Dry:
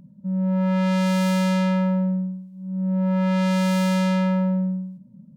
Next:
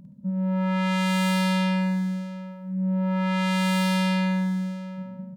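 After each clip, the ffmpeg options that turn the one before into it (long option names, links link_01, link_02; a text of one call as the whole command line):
ffmpeg -i in.wav -af "aecho=1:1:51|122|706:0.531|0.188|0.141" out.wav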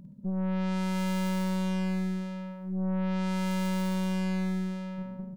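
ffmpeg -i in.wav -af "aeval=exprs='(tanh(22.4*val(0)+0.4)-tanh(0.4))/22.4':channel_layout=same" out.wav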